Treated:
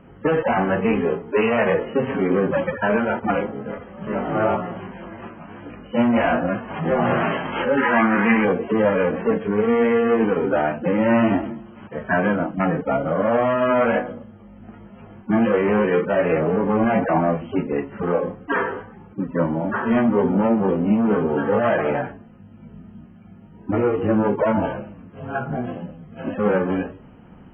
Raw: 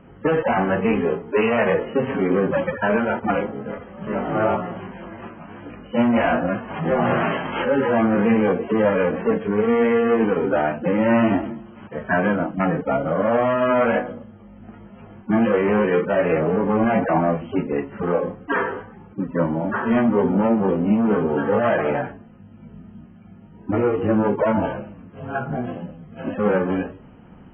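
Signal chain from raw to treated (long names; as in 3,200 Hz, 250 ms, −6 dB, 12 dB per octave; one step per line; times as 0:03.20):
0:07.77–0:08.45: octave-band graphic EQ 125/250/500/1,000/2,000 Hz −11/+4/−7/+6/+10 dB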